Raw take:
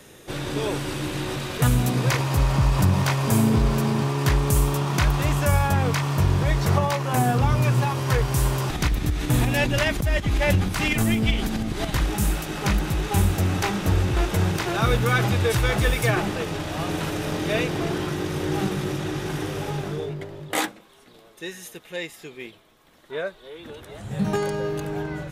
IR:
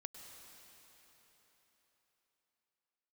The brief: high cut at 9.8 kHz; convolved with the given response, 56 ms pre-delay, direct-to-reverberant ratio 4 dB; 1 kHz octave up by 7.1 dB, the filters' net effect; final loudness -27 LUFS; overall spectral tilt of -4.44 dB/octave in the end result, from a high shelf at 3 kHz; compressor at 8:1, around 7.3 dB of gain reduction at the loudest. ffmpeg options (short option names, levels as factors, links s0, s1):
-filter_complex "[0:a]lowpass=9800,equalizer=f=1000:t=o:g=8,highshelf=f=3000:g=8,acompressor=threshold=0.0891:ratio=8,asplit=2[s0][s1];[1:a]atrim=start_sample=2205,adelay=56[s2];[s1][s2]afir=irnorm=-1:irlink=0,volume=1.06[s3];[s0][s3]amix=inputs=2:normalize=0,volume=0.75"